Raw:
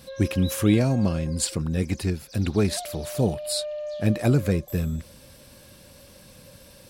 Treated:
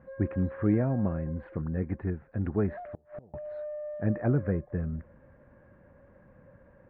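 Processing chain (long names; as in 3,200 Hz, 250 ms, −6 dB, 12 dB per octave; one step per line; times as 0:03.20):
elliptic low-pass filter 1,800 Hz, stop band 70 dB
0:02.84–0:03.34: gate with flip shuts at −23 dBFS, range −29 dB
level −5 dB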